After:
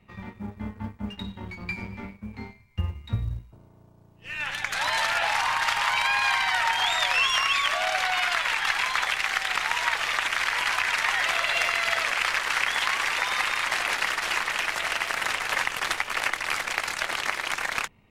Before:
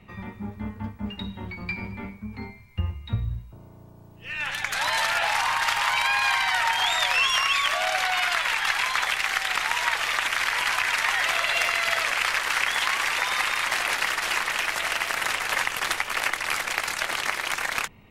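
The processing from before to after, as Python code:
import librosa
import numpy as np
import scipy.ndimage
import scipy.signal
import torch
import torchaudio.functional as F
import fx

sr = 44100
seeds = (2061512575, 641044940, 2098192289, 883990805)

y = fx.law_mismatch(x, sr, coded='A')
y = fx.high_shelf(y, sr, hz=12000.0, db=-9.5)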